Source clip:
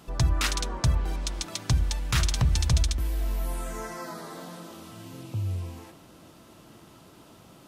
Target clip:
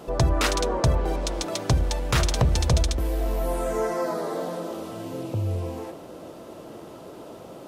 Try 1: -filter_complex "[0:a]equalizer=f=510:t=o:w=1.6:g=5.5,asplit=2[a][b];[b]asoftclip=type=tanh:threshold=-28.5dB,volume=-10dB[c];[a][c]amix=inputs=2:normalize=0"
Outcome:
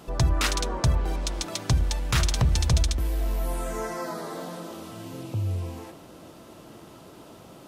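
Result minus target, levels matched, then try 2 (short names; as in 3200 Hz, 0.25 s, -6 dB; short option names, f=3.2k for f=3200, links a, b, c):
500 Hz band -6.5 dB
-filter_complex "[0:a]equalizer=f=510:t=o:w=1.6:g=15,asplit=2[a][b];[b]asoftclip=type=tanh:threshold=-28.5dB,volume=-10dB[c];[a][c]amix=inputs=2:normalize=0"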